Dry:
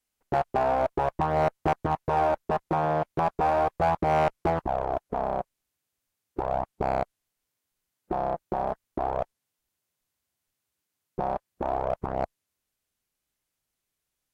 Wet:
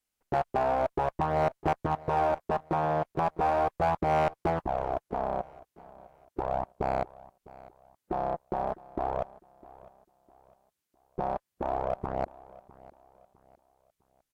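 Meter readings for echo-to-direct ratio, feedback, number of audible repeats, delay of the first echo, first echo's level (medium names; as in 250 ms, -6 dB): -20.0 dB, 36%, 2, 655 ms, -20.5 dB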